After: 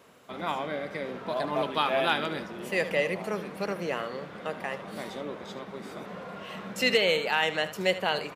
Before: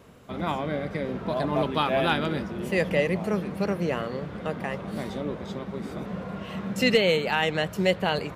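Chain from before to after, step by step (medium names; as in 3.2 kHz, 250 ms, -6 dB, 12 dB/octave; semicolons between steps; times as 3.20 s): high-pass 560 Hz 6 dB/octave; delay 75 ms -13.5 dB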